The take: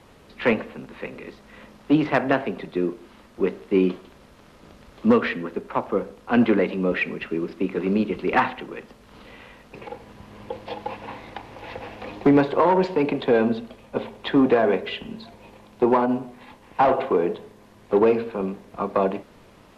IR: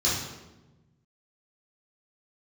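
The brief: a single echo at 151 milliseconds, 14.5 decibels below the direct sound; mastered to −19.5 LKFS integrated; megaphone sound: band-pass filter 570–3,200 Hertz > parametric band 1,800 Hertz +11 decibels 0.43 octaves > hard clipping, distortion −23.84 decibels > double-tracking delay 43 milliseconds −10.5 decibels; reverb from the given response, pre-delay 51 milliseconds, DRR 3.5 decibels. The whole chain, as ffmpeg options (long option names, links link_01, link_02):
-filter_complex "[0:a]aecho=1:1:151:0.188,asplit=2[link_01][link_02];[1:a]atrim=start_sample=2205,adelay=51[link_03];[link_02][link_03]afir=irnorm=-1:irlink=0,volume=-15.5dB[link_04];[link_01][link_04]amix=inputs=2:normalize=0,highpass=570,lowpass=3200,equalizer=frequency=1800:width_type=o:width=0.43:gain=11,asoftclip=type=hard:threshold=-9dB,asplit=2[link_05][link_06];[link_06]adelay=43,volume=-10.5dB[link_07];[link_05][link_07]amix=inputs=2:normalize=0,volume=4.5dB"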